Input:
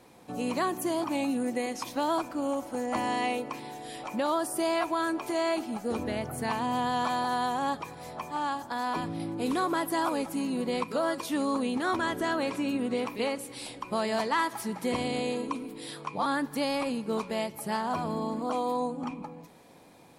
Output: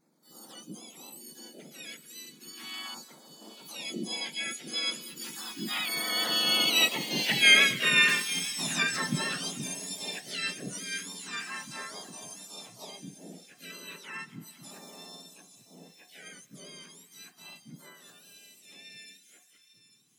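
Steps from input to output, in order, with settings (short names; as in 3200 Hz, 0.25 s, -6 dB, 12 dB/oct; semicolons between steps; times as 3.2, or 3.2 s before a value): spectrum mirrored in octaves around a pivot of 1400 Hz; Doppler pass-by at 7.37, 39 m/s, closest 16 m; de-hum 262.6 Hz, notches 8; dynamic EQ 2000 Hz, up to +6 dB, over -55 dBFS, Q 0.77; harmoniser +3 st -11 dB, +7 st -1 dB; LFO notch saw down 0.34 Hz 430–3100 Hz; thin delay 0.847 s, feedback 34%, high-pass 4000 Hz, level -9.5 dB; gain +8.5 dB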